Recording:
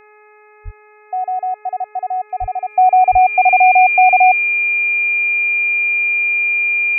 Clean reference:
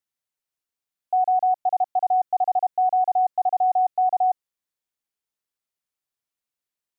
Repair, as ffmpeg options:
-filter_complex "[0:a]bandreject=f=422.5:t=h:w=4,bandreject=f=845:t=h:w=4,bandreject=f=1267.5:t=h:w=4,bandreject=f=1690:t=h:w=4,bandreject=f=2112.5:t=h:w=4,bandreject=f=2535:t=h:w=4,bandreject=f=2400:w=30,asplit=3[s0][s1][s2];[s0]afade=t=out:st=0.64:d=0.02[s3];[s1]highpass=f=140:w=0.5412,highpass=f=140:w=1.3066,afade=t=in:st=0.64:d=0.02,afade=t=out:st=0.76:d=0.02[s4];[s2]afade=t=in:st=0.76:d=0.02[s5];[s3][s4][s5]amix=inputs=3:normalize=0,asplit=3[s6][s7][s8];[s6]afade=t=out:st=2.4:d=0.02[s9];[s7]highpass=f=140:w=0.5412,highpass=f=140:w=1.3066,afade=t=in:st=2.4:d=0.02,afade=t=out:st=2.52:d=0.02[s10];[s8]afade=t=in:st=2.52:d=0.02[s11];[s9][s10][s11]amix=inputs=3:normalize=0,asplit=3[s12][s13][s14];[s12]afade=t=out:st=3.11:d=0.02[s15];[s13]highpass=f=140:w=0.5412,highpass=f=140:w=1.3066,afade=t=in:st=3.11:d=0.02,afade=t=out:st=3.23:d=0.02[s16];[s14]afade=t=in:st=3.23:d=0.02[s17];[s15][s16][s17]amix=inputs=3:normalize=0,asetnsamples=n=441:p=0,asendcmd='2.7 volume volume -10dB',volume=1"

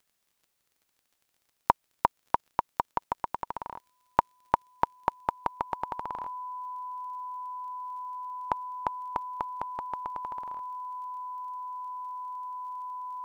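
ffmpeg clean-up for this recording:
-af "adeclick=t=4,bandreject=f=1000:w=30"

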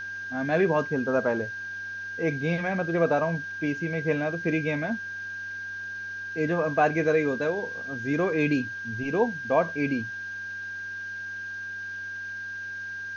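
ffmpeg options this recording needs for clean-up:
-af "bandreject=f=95.9:t=h:w=4,bandreject=f=191.8:t=h:w=4,bandreject=f=287.7:t=h:w=4,bandreject=f=383.6:t=h:w=4,bandreject=f=1600:w=30,afwtdn=0.0028"

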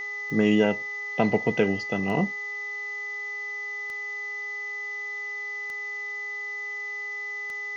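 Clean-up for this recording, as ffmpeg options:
-af "adeclick=t=4,bandreject=f=413.4:t=h:w=4,bandreject=f=826.8:t=h:w=4,bandreject=f=1240.2:t=h:w=4,bandreject=f=2000:w=30,afftdn=nr=30:nf=-34"

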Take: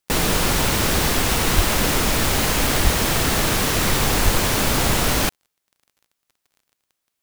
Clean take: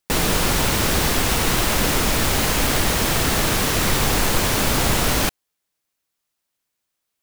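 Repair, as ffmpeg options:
-filter_complex "[0:a]adeclick=t=4,asplit=3[s0][s1][s2];[s0]afade=t=out:st=1.55:d=0.02[s3];[s1]highpass=f=140:w=0.5412,highpass=f=140:w=1.3066,afade=t=in:st=1.55:d=0.02,afade=t=out:st=1.67:d=0.02[s4];[s2]afade=t=in:st=1.67:d=0.02[s5];[s3][s4][s5]amix=inputs=3:normalize=0,asplit=3[s6][s7][s8];[s6]afade=t=out:st=2.83:d=0.02[s9];[s7]highpass=f=140:w=0.5412,highpass=f=140:w=1.3066,afade=t=in:st=2.83:d=0.02,afade=t=out:st=2.95:d=0.02[s10];[s8]afade=t=in:st=2.95:d=0.02[s11];[s9][s10][s11]amix=inputs=3:normalize=0,asplit=3[s12][s13][s14];[s12]afade=t=out:st=4.24:d=0.02[s15];[s13]highpass=f=140:w=0.5412,highpass=f=140:w=1.3066,afade=t=in:st=4.24:d=0.02,afade=t=out:st=4.36:d=0.02[s16];[s14]afade=t=in:st=4.36:d=0.02[s17];[s15][s16][s17]amix=inputs=3:normalize=0"

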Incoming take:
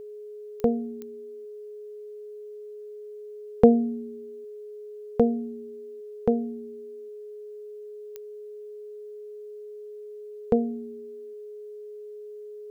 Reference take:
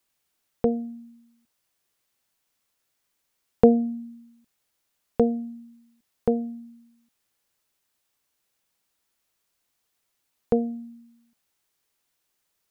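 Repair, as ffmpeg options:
-af "adeclick=t=4,bandreject=f=420:w=30"

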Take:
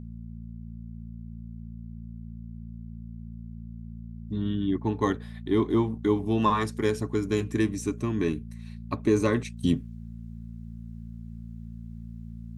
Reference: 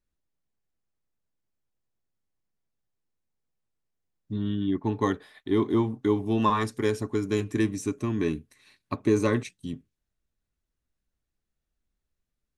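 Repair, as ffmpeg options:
-af "bandreject=f=56.9:t=h:w=4,bandreject=f=113.8:t=h:w=4,bandreject=f=170.7:t=h:w=4,bandreject=f=227.6:t=h:w=4,asetnsamples=n=441:p=0,asendcmd='9.57 volume volume -11.5dB',volume=1"

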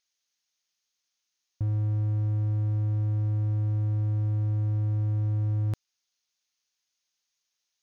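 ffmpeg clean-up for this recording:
-af "agate=range=0.0891:threshold=0.0002"

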